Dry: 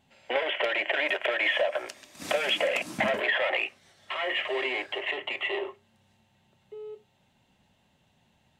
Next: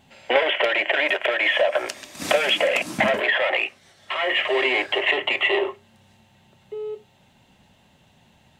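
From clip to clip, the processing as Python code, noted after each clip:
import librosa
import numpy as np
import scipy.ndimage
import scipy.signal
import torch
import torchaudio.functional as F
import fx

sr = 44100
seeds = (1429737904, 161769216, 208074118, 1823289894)

y = fx.rider(x, sr, range_db=4, speed_s=0.5)
y = F.gain(torch.from_numpy(y), 7.5).numpy()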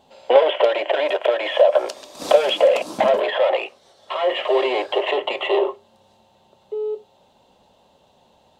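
y = fx.graphic_eq_10(x, sr, hz=(125, 500, 1000, 2000, 4000), db=(-6, 12, 8, -9, 7))
y = F.gain(torch.from_numpy(y), -4.5).numpy()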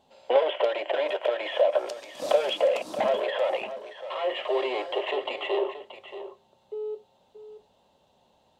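y = x + 10.0 ** (-12.5 / 20.0) * np.pad(x, (int(628 * sr / 1000.0), 0))[:len(x)]
y = F.gain(torch.from_numpy(y), -8.0).numpy()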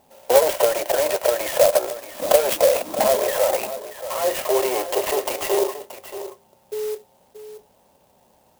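y = fx.clock_jitter(x, sr, seeds[0], jitter_ms=0.075)
y = F.gain(torch.from_numpy(y), 6.5).numpy()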